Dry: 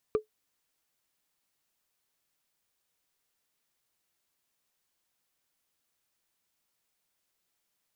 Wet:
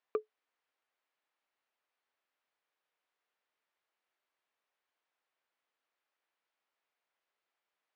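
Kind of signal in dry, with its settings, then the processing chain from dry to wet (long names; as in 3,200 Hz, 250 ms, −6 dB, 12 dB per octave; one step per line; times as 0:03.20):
struck wood, lowest mode 430 Hz, decay 0.12 s, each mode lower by 10 dB, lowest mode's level −18 dB
band-pass filter 460–2,400 Hz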